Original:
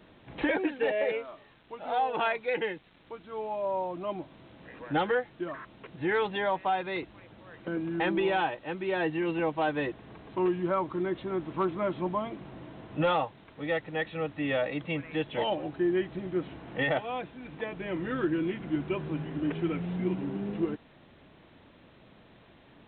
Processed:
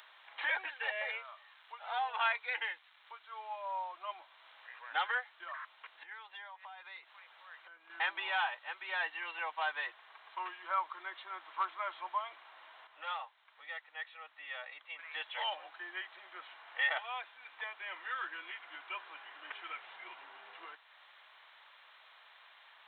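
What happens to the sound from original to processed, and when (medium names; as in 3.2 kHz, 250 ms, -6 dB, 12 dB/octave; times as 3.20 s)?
6.03–7.90 s: compression, threshold -42 dBFS
12.87–14.99 s: gain -8 dB
whole clip: high-pass 950 Hz 24 dB/octave; band-stop 2.6 kHz, Q 20; upward compressor, threshold -53 dBFS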